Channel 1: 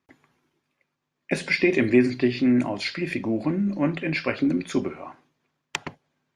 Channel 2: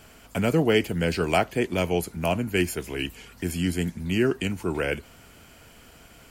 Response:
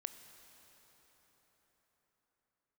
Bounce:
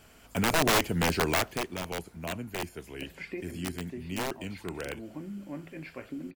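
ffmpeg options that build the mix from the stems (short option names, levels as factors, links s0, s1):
-filter_complex "[0:a]lowpass=f=1800:p=1,acompressor=threshold=0.02:ratio=1.5,adelay=1700,volume=0.168[s0];[1:a]deesser=0.75,aeval=exprs='(mod(6.31*val(0)+1,2)-1)/6.31':c=same,volume=0.473,afade=t=out:st=1.29:d=0.4:silence=0.354813,asplit=3[s1][s2][s3];[s2]volume=0.112[s4];[s3]apad=whole_len=355134[s5];[s0][s5]sidechaincompress=threshold=0.00794:ratio=8:attack=5.6:release=316[s6];[2:a]atrim=start_sample=2205[s7];[s4][s7]afir=irnorm=-1:irlink=0[s8];[s6][s1][s8]amix=inputs=3:normalize=0,dynaudnorm=f=130:g=5:m=1.68"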